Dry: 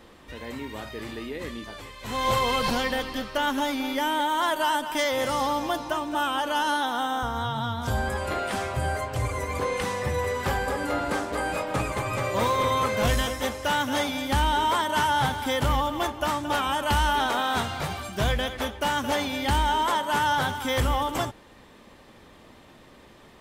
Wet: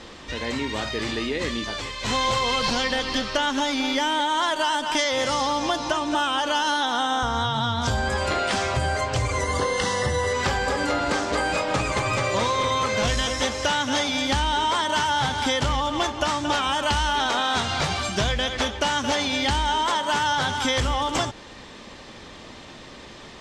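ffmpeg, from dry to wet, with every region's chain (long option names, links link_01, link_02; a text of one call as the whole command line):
ffmpeg -i in.wav -filter_complex "[0:a]asettb=1/sr,asplit=3[link_01][link_02][link_03];[link_01]atrim=end=9.414[link_04];[link_02]atrim=start=9.41:end=10.33,asetpts=PTS-STARTPTS,afade=type=in:duration=0.004:curve=qsin,afade=type=out:start_time=0.916:duration=0.004:curve=qsin,aeval=exprs='val(0)+0.00501*sin(2*PI*9500*n/s)':channel_layout=same,asuperstop=centerf=2400:order=20:qfactor=6.1[link_05];[link_03]atrim=start=10.326[link_06];[link_04][link_05]acrossfade=duration=0.004:curve1=hsin:curve2=qsin[link_07];[link_07][link_06]acrossfade=duration=0.004:curve1=qsin:curve2=hsin,lowpass=frequency=6300:width=0.5412,lowpass=frequency=6300:width=1.3066,aemphasis=mode=production:type=75kf,acompressor=threshold=-28dB:ratio=6,volume=7.5dB" out.wav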